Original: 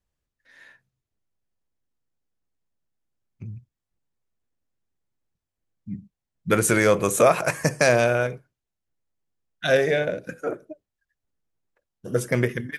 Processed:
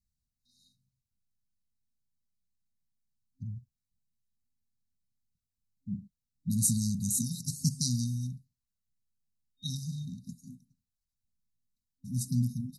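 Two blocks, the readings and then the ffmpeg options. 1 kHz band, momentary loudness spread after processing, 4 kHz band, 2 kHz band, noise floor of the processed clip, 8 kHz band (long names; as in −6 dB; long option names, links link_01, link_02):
below −40 dB, 19 LU, −6.0 dB, below −40 dB, below −85 dBFS, −2.5 dB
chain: -af "afftfilt=real='re*(1-between(b*sr/4096,260,3700))':imag='im*(1-between(b*sr/4096,260,3700))':win_size=4096:overlap=0.75,volume=-2.5dB"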